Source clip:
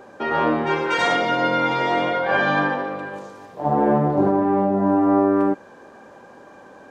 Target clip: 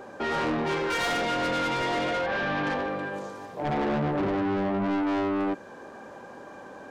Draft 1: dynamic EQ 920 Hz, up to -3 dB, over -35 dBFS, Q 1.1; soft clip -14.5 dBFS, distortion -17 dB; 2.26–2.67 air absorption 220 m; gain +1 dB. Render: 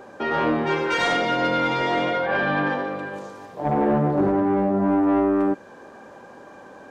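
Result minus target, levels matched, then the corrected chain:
soft clip: distortion -10 dB
dynamic EQ 920 Hz, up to -3 dB, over -35 dBFS, Q 1.1; soft clip -25.5 dBFS, distortion -7 dB; 2.26–2.67 air absorption 220 m; gain +1 dB

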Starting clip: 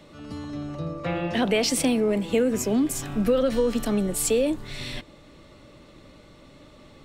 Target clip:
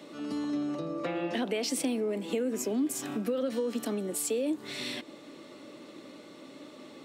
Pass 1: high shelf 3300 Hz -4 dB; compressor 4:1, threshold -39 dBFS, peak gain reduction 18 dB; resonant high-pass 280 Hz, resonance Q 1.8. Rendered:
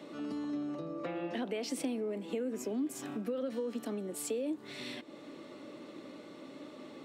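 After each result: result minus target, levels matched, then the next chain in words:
compressor: peak gain reduction +5 dB; 8000 Hz band -3.0 dB
high shelf 3300 Hz -4 dB; compressor 4:1, threshold -32 dBFS, peak gain reduction 13 dB; resonant high-pass 280 Hz, resonance Q 1.8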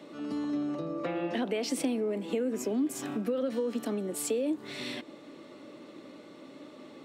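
8000 Hz band -3.0 dB
high shelf 3300 Hz +3 dB; compressor 4:1, threshold -32 dBFS, peak gain reduction 13 dB; resonant high-pass 280 Hz, resonance Q 1.8

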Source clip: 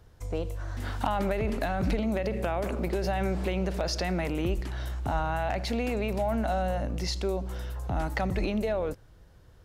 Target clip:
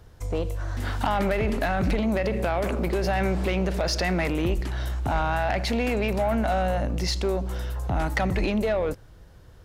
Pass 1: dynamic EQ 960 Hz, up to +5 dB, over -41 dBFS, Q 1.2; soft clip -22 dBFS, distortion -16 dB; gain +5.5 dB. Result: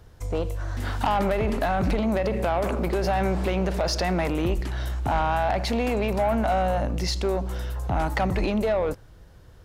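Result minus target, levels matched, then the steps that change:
2000 Hz band -2.5 dB
change: dynamic EQ 2000 Hz, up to +5 dB, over -41 dBFS, Q 1.2

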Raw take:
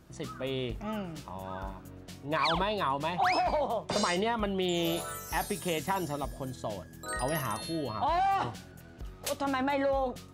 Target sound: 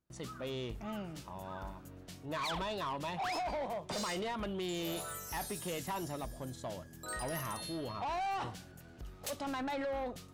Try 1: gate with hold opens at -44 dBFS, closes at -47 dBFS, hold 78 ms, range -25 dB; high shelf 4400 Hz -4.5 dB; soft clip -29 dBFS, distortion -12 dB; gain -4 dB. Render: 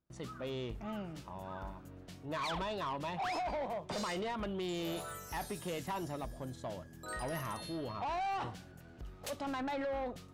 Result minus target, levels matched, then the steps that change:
8000 Hz band -4.5 dB
change: high shelf 4400 Hz +3 dB

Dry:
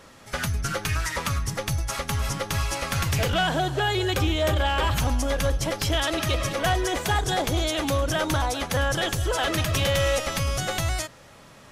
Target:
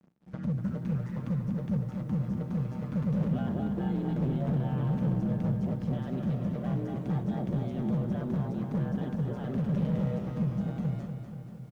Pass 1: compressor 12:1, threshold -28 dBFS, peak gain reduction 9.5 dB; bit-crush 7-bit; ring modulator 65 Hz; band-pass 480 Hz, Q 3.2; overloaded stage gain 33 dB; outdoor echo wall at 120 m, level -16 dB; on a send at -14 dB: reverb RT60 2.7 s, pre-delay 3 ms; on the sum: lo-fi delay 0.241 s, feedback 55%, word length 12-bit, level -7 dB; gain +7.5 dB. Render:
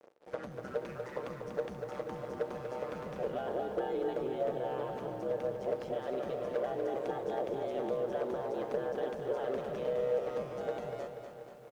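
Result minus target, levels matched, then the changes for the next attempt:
500 Hz band +12.5 dB; compressor: peak gain reduction +9.5 dB
change: band-pass 180 Hz, Q 3.2; remove: compressor 12:1, threshold -28 dBFS, peak gain reduction 9.5 dB

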